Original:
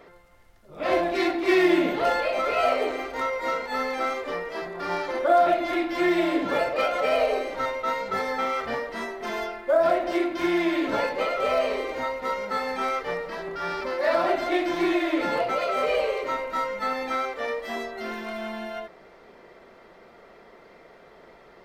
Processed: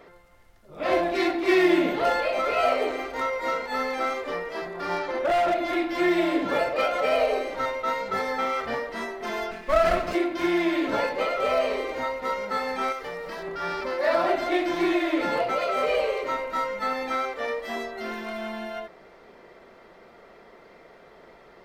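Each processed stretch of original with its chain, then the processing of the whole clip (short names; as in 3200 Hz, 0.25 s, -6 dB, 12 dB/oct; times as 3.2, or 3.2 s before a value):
4.99–5.56 high shelf 7200 Hz -9 dB + hard clip -19.5 dBFS
9.51–10.15 minimum comb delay 0.42 ms + comb 4.6 ms, depth 54%
12.92–13.43 high shelf 6100 Hz +8 dB + compressor 4:1, threshold -31 dBFS + short-mantissa float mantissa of 6-bit
whole clip: dry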